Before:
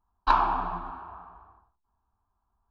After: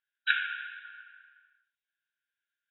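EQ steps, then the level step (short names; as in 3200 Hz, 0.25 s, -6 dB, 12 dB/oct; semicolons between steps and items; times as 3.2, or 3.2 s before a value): brick-wall FIR band-pass 1400–3900 Hz; +8.5 dB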